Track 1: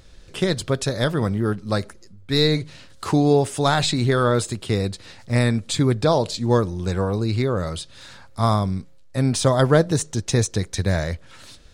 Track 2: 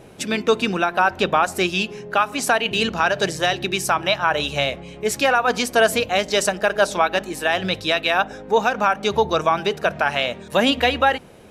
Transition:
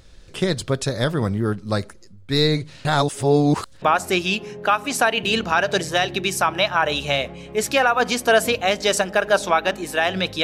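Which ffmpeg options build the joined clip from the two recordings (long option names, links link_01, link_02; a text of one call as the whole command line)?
ffmpeg -i cue0.wav -i cue1.wav -filter_complex "[0:a]apad=whole_dur=10.43,atrim=end=10.43,asplit=2[link_01][link_02];[link_01]atrim=end=2.852[link_03];[link_02]atrim=start=2.848:end=3.822,asetpts=PTS-STARTPTS,areverse[link_04];[1:a]atrim=start=1.298:end=7.91[link_05];[link_03][link_04]acrossfade=duration=0.004:curve1=hsin:curve2=hsin[link_06];[link_06][link_05]acrossfade=duration=0.004:curve1=hsin:curve2=hsin" out.wav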